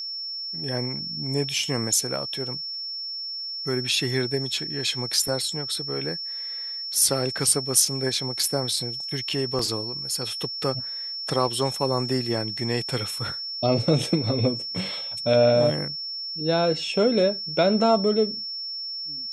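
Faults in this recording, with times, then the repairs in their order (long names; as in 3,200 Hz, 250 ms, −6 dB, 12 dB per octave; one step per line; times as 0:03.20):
whistle 5,400 Hz −30 dBFS
0:09.59: drop-out 2.5 ms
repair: notch filter 5,400 Hz, Q 30
repair the gap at 0:09.59, 2.5 ms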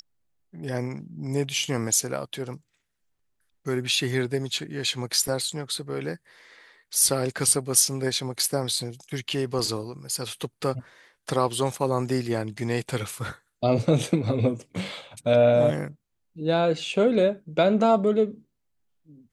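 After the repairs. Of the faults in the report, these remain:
none of them is left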